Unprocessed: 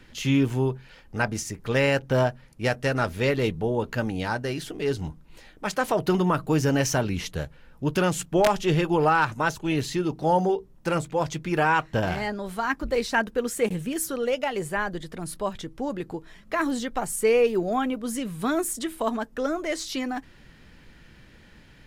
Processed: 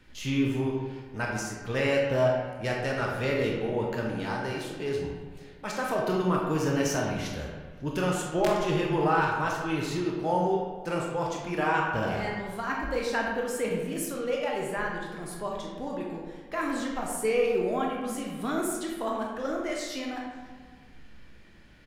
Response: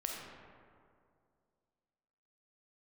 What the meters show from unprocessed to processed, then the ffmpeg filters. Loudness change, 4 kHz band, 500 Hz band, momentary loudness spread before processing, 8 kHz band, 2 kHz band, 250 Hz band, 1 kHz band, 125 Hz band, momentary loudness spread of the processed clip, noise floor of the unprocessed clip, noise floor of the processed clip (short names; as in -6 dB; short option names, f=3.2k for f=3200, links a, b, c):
-3.5 dB, -4.0 dB, -3.0 dB, 10 LU, -5.0 dB, -3.5 dB, -3.5 dB, -3.5 dB, -5.0 dB, 11 LU, -52 dBFS, -49 dBFS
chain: -filter_complex "[0:a]asplit=2[a][b];[b]adelay=542.3,volume=-22dB,highshelf=f=4k:g=-12.2[c];[a][c]amix=inputs=2:normalize=0[d];[1:a]atrim=start_sample=2205,asetrate=79380,aresample=44100[e];[d][e]afir=irnorm=-1:irlink=0"